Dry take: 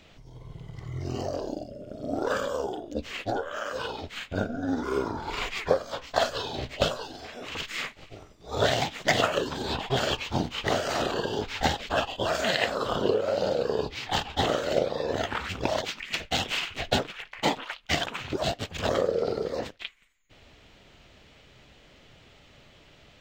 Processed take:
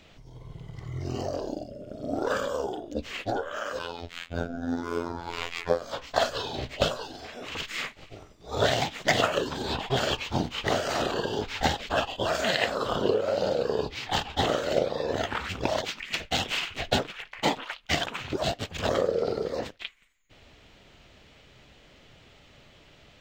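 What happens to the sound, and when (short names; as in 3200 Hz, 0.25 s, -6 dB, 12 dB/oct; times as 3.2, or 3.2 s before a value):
3.79–5.82 robotiser 85.3 Hz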